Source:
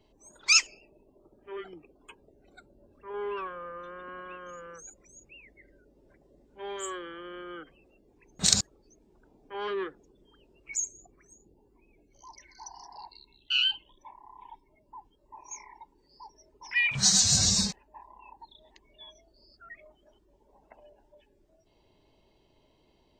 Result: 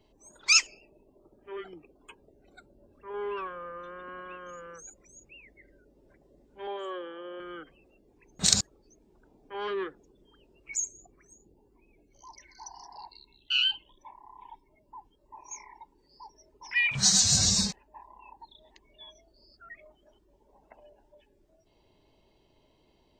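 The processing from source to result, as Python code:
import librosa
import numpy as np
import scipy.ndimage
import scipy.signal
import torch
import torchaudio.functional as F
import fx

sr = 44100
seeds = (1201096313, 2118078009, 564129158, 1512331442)

y = fx.cabinet(x, sr, low_hz=240.0, low_slope=12, high_hz=3500.0, hz=(550.0, 820.0, 1400.0, 2100.0), db=(7, 5, -5, -9), at=(6.67, 7.4))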